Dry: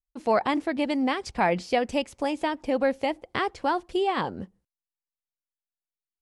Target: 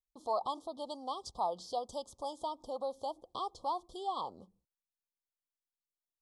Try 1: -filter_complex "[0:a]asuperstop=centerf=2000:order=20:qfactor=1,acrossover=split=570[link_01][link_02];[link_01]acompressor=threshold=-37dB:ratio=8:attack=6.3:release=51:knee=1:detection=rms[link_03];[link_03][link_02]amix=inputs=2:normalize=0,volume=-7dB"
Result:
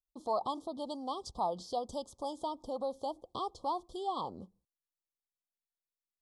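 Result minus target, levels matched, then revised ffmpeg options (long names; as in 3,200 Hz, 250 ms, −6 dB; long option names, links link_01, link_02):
downward compressor: peak gain reduction −8.5 dB
-filter_complex "[0:a]asuperstop=centerf=2000:order=20:qfactor=1,acrossover=split=570[link_01][link_02];[link_01]acompressor=threshold=-47dB:ratio=8:attack=6.3:release=51:knee=1:detection=rms[link_03];[link_03][link_02]amix=inputs=2:normalize=0,volume=-7dB"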